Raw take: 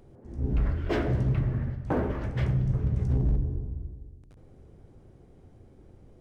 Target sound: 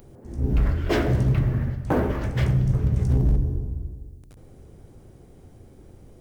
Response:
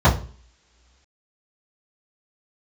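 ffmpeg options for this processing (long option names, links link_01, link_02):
-af "aemphasis=mode=production:type=50kf,volume=5dB"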